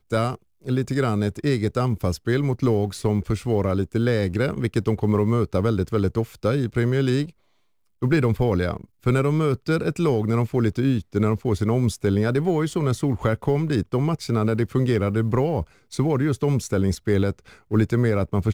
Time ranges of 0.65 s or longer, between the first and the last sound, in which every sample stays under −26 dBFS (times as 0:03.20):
0:07.26–0:08.02